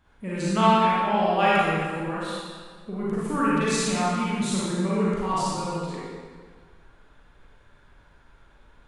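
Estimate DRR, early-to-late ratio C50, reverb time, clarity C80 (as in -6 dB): -8.5 dB, -5.0 dB, 1.8 s, -1.5 dB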